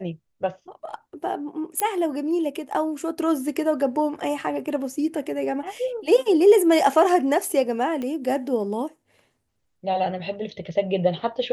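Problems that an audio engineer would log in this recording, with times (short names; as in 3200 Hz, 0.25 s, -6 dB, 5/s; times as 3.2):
1.8 pop -7 dBFS
8.02 pop -19 dBFS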